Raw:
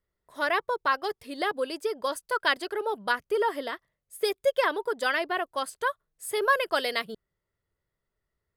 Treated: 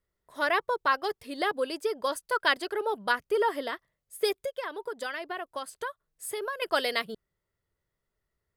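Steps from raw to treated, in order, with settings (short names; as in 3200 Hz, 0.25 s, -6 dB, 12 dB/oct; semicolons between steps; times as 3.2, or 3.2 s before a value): 4.37–6.62 compressor 6:1, threshold -32 dBFS, peak gain reduction 14.5 dB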